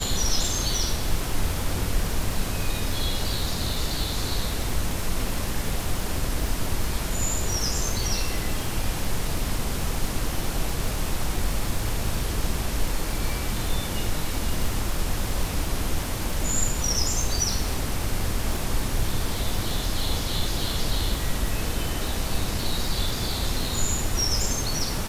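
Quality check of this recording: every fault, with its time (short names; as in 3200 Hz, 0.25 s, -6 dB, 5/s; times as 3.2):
crackle 76/s -27 dBFS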